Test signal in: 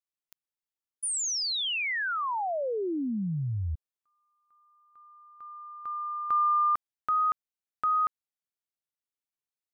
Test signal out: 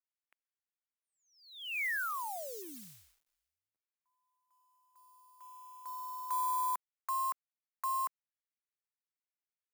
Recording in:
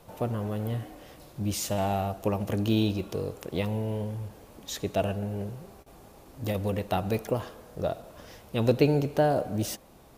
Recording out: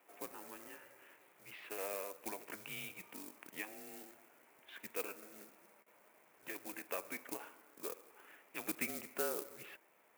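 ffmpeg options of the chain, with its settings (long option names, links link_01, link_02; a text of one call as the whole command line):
ffmpeg -i in.wav -af "highpass=frequency=370:width_type=q:width=0.5412,highpass=frequency=370:width_type=q:width=1.307,lowpass=frequency=2500:width_type=q:width=0.5176,lowpass=frequency=2500:width_type=q:width=0.7071,lowpass=frequency=2500:width_type=q:width=1.932,afreqshift=-190,acrusher=bits=7:mode=log:mix=0:aa=0.000001,aderivative,volume=8dB" out.wav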